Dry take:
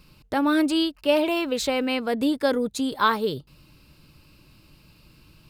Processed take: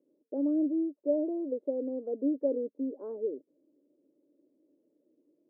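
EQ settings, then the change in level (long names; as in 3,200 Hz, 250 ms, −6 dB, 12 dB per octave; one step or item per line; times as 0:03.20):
Chebyshev band-pass filter 270–580 Hz, order 3
−5.5 dB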